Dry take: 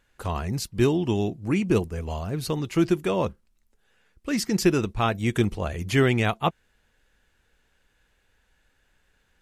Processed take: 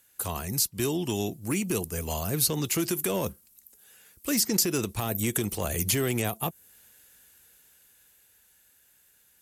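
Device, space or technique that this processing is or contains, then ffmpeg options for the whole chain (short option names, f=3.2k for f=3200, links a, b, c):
FM broadcast chain: -filter_complex "[0:a]highpass=80,dynaudnorm=f=210:g=21:m=11.5dB,acrossover=split=380|830|7600[a][b][c][d];[a]acompressor=threshold=-23dB:ratio=4[e];[b]acompressor=threshold=-25dB:ratio=4[f];[c]acompressor=threshold=-33dB:ratio=4[g];[d]acompressor=threshold=-51dB:ratio=4[h];[e][f][g][h]amix=inputs=4:normalize=0,aemphasis=mode=production:type=50fm,alimiter=limit=-15dB:level=0:latency=1:release=46,asoftclip=type=hard:threshold=-17dB,lowpass=f=15k:w=0.5412,lowpass=f=15k:w=1.3066,aemphasis=mode=production:type=50fm,volume=-3.5dB"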